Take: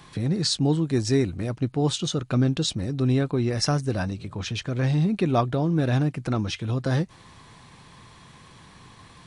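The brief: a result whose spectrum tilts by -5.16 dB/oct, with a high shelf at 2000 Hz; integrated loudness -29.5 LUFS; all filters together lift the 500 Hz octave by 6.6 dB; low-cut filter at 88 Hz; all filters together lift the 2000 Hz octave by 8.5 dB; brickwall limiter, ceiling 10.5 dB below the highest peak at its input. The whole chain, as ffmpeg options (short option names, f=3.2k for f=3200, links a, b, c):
-af "highpass=88,equalizer=f=500:t=o:g=8,highshelf=f=2k:g=3.5,equalizer=f=2k:t=o:g=8.5,volume=-4dB,alimiter=limit=-19dB:level=0:latency=1"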